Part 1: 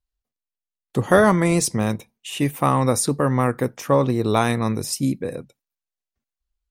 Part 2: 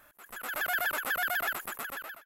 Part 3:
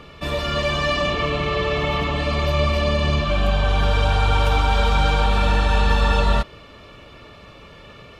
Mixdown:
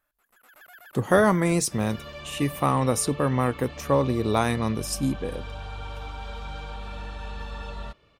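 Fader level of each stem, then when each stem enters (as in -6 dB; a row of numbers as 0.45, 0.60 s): -4.0, -19.0, -18.5 dB; 0.00, 0.00, 1.50 s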